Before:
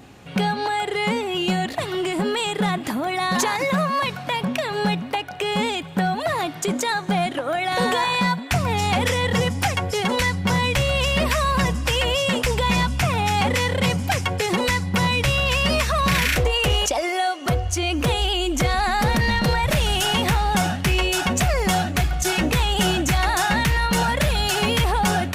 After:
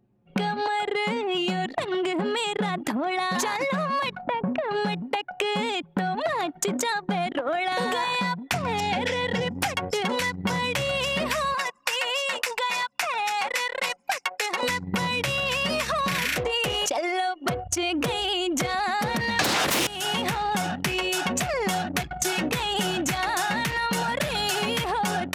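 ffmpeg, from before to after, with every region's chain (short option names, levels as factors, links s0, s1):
-filter_complex "[0:a]asettb=1/sr,asplit=3[s0][s1][s2];[s0]atrim=end=4.214[s3];[s1]atrim=start=4.21:end=4.71,asetpts=PTS-STARTPTS,afade=t=in:d=0.004:c=qsin,afade=t=out:st=0.496:d=0.004:c=qsin,lowpass=f=1800:p=1,aemphasis=mode=reproduction:type=75fm[s4];[s2]atrim=start=4.706[s5];[s3][s4]acrossfade=d=0.004:c1=hsin:c2=qsin[s6];[s6][s5]acrossfade=d=0.004:c1=qsin:c2=hsin,asettb=1/sr,asplit=3[s7][s8][s9];[s7]atrim=end=8.804[s10];[s8]atrim=start=8.8:end=9.54,asetpts=PTS-STARTPTS,afade=t=in:d=0.004:c=qsin,afade=t=out:st=0.736:d=0.004:c=qsin,asuperstop=centerf=1200:order=4:qfactor=3.7,acrossover=split=6100[s11][s12];[s12]acompressor=threshold=0.00355:ratio=4:attack=1:release=60[s13];[s11][s13]amix=inputs=2:normalize=0[s14];[s9]atrim=start=9.536[s15];[s10][s14]acrossfade=d=0.004:c1=hsin:c2=qsin[s16];[s16][s15]acrossfade=d=0.004:c1=qsin:c2=hsin,asettb=1/sr,asplit=3[s17][s18][s19];[s17]atrim=end=11.544[s20];[s18]atrim=start=11.54:end=14.63,asetpts=PTS-STARTPTS,afade=t=in:d=0.004:c=qsin,afade=t=out:st=3.086:d=0.004:c=qsin,highpass=750,bandreject=f=3200:w=9.9[s21];[s19]atrim=start=14.626[s22];[s20][s21]acrossfade=d=0.004:c1=hsin:c2=qsin[s23];[s23][s22]acrossfade=d=0.004:c1=qsin:c2=hsin,asettb=1/sr,asplit=3[s24][s25][s26];[s24]atrim=end=19.394[s27];[s25]atrim=start=19.39:end=19.87,asetpts=PTS-STARTPTS,afade=t=in:d=0.004:c=qsin,afade=t=out:st=0.476:d=0.004:c=qsin,afreqshift=-180,acontrast=48,aeval=exprs='0.596*sin(PI/2*5.01*val(0)/0.596)':c=same[s28];[s26]atrim=start=19.866[s29];[s27][s28]acrossfade=d=0.004:c1=hsin:c2=qsin[s30];[s30][s29]acrossfade=d=0.004:c1=qsin:c2=hsin,highpass=170,anlmdn=100,acompressor=threshold=0.0398:ratio=6,volume=1.68"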